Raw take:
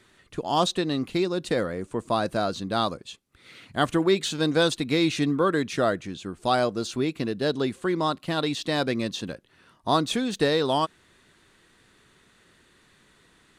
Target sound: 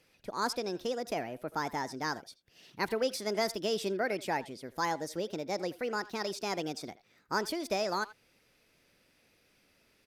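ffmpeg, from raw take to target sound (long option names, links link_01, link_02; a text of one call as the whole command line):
ffmpeg -i in.wav -filter_complex "[0:a]asplit=2[link_01][link_02];[link_02]adelay=110,highpass=300,lowpass=3400,asoftclip=type=hard:threshold=-18.5dB,volume=-17dB[link_03];[link_01][link_03]amix=inputs=2:normalize=0,asetrate=59535,aresample=44100,volume=-9dB" out.wav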